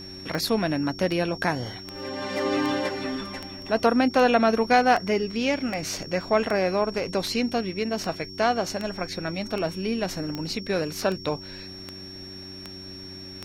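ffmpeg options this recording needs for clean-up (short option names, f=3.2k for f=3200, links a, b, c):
-af "adeclick=t=4,bandreject=f=94.3:t=h:w=4,bandreject=f=188.6:t=h:w=4,bandreject=f=282.9:t=h:w=4,bandreject=f=377.2:t=h:w=4,bandreject=f=5.5k:w=30"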